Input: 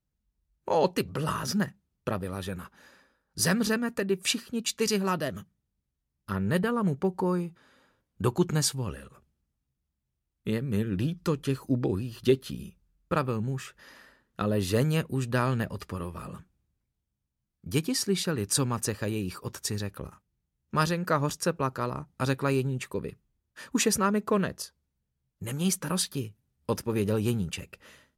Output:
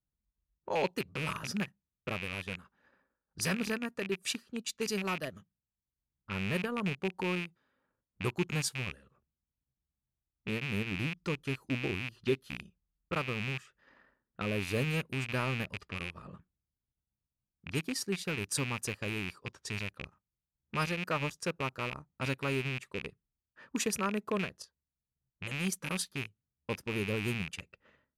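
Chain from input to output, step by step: rattling part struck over -33 dBFS, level -18 dBFS; low-pass opened by the level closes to 1600 Hz, open at -25.5 dBFS; transient shaper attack -1 dB, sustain -8 dB; gain -7 dB

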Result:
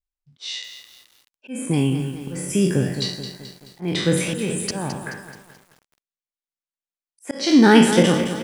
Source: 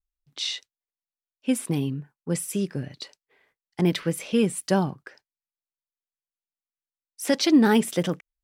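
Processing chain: spectral trails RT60 0.57 s; notch 1300 Hz, Q 21; in parallel at +3 dB: vocal rider within 4 dB 2 s; on the sum: auto swell 0.391 s; on a send: echo 0.232 s -24 dB; on the sum: spectral noise reduction 12 dB; LPF 9400 Hz 24 dB/oct; lo-fi delay 0.215 s, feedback 55%, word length 7-bit, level -9.5 dB; gain -1 dB

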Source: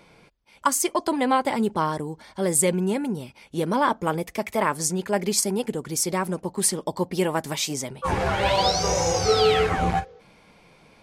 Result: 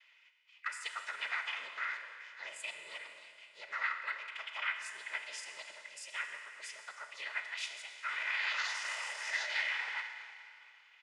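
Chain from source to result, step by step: noise vocoder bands 12; comb 2 ms, depth 43%; limiter -13.5 dBFS, peak gain reduction 8 dB; Schroeder reverb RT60 2.4 s, combs from 26 ms, DRR 5.5 dB; formant shift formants +4 st; ladder band-pass 2300 Hz, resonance 60%; gain +1.5 dB

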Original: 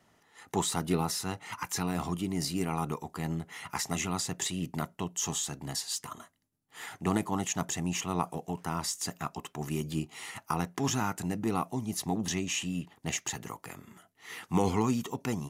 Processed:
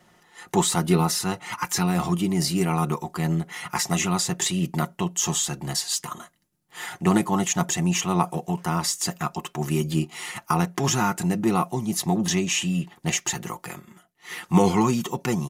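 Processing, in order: comb 5.6 ms, depth 57%; 13.79–14.46 upward expander 1.5:1, over -59 dBFS; gain +7 dB

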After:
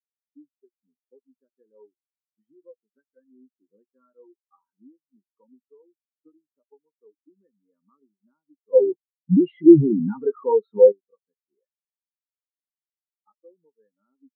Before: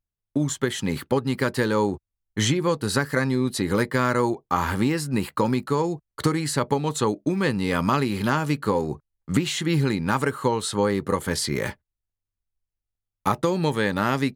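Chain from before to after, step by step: three-band isolator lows -23 dB, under 180 Hz, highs -23 dB, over 3300 Hz; 8.73–10.92 sample leveller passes 5; spectral expander 4:1; gain +6.5 dB

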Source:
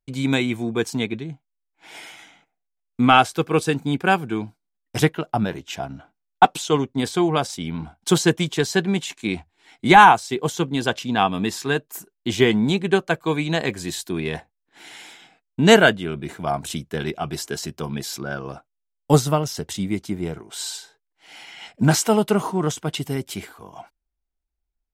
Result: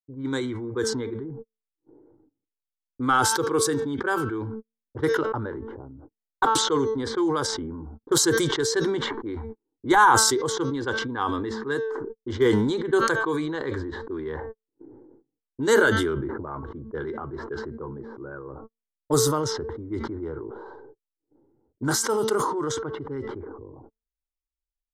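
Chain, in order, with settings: fixed phaser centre 690 Hz, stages 6; de-hum 224 Hz, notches 29; gate -48 dBFS, range -48 dB; low-pass opened by the level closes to 330 Hz, open at -18.5 dBFS; vibrato 3 Hz 26 cents; low-pass opened by the level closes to 460 Hz, open at -23 dBFS; sustainer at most 27 dB/s; gain -3.5 dB

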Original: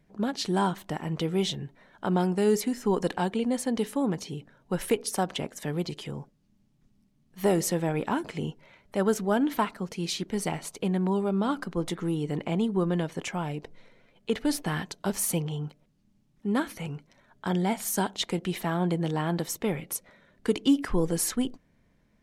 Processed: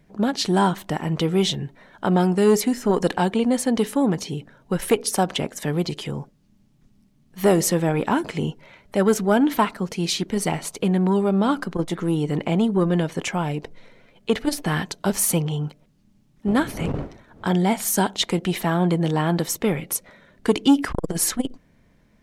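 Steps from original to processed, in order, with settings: 16.46–17.45 wind noise 350 Hz -37 dBFS; core saturation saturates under 320 Hz; gain +7.5 dB

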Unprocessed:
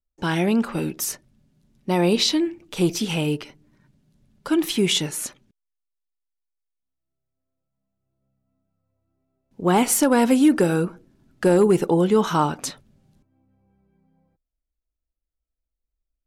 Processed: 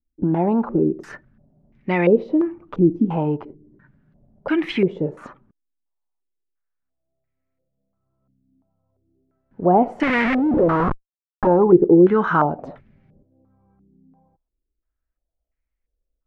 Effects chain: low shelf 390 Hz +2 dB; in parallel at -0.5 dB: compressor, threshold -25 dBFS, peak gain reduction 13.5 dB; 10.03–11.47 on the sum: Schmitt trigger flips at -31 dBFS; stepped low-pass 2.9 Hz 290–2100 Hz; gain -4 dB

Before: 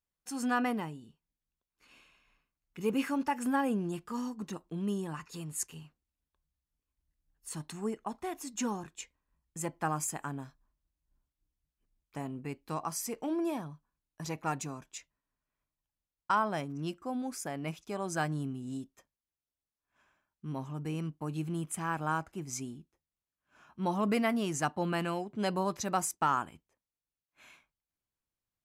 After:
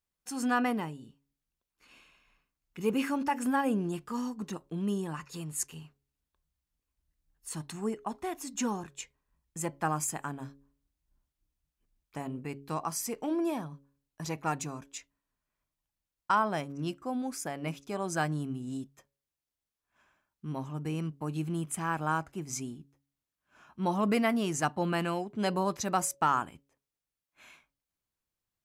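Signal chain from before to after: de-hum 139.2 Hz, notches 4; gain +2 dB

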